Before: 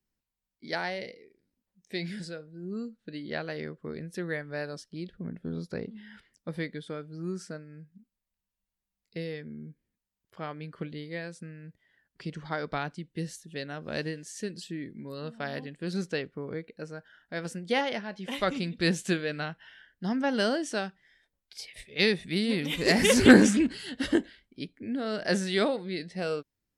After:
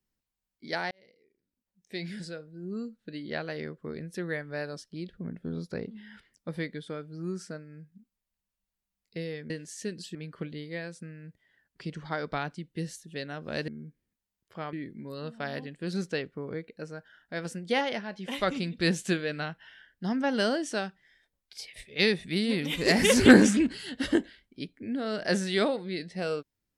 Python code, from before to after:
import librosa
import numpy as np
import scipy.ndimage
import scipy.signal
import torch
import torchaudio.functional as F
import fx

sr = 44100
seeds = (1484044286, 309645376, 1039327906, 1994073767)

y = fx.edit(x, sr, fx.fade_in_span(start_s=0.91, length_s=1.43),
    fx.swap(start_s=9.5, length_s=1.05, other_s=14.08, other_length_s=0.65), tone=tone)